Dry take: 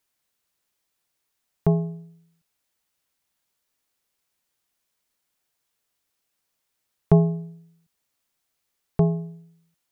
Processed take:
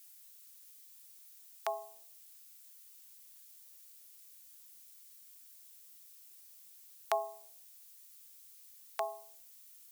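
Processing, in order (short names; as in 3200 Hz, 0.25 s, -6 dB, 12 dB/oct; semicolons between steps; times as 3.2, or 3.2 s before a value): steep high-pass 600 Hz 36 dB/oct; differentiator; gain +17.5 dB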